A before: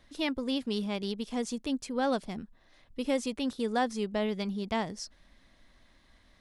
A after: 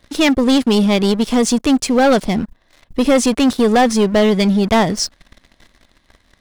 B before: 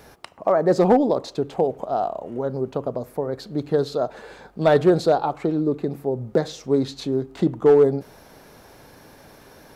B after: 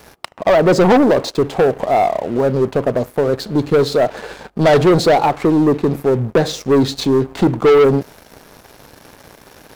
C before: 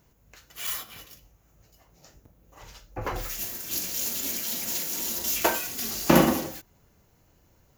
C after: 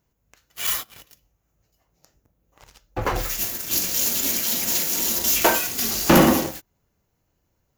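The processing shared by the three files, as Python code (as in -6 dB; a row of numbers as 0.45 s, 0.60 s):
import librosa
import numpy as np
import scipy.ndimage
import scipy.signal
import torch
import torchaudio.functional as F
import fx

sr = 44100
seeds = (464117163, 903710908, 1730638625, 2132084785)

y = fx.leveller(x, sr, passes=3)
y = y * 10.0 ** (-6 / 20.0) / np.max(np.abs(y))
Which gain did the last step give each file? +10.0 dB, +1.0 dB, -3.5 dB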